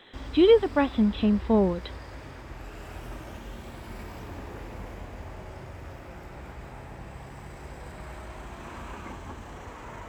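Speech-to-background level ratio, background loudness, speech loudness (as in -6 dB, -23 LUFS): 19.5 dB, -42.0 LUFS, -22.5 LUFS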